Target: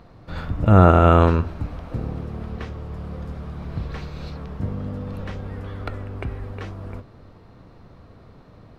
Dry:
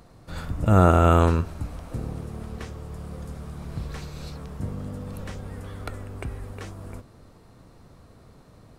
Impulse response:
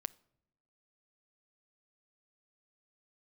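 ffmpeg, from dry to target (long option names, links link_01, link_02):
-filter_complex "[0:a]asplit=2[link_01][link_02];[1:a]atrim=start_sample=2205,asetrate=30429,aresample=44100,lowpass=4400[link_03];[link_02][link_03]afir=irnorm=-1:irlink=0,volume=11dB[link_04];[link_01][link_04]amix=inputs=2:normalize=0,volume=-9dB"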